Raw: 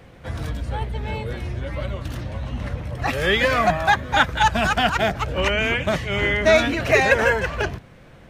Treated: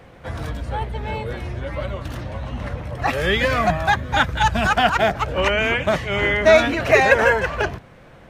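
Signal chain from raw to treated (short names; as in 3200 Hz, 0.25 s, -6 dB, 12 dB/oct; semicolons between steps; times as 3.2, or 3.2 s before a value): bell 880 Hz +5 dB 2.4 oct, from 3.22 s 89 Hz, from 4.66 s 870 Hz; gain -1 dB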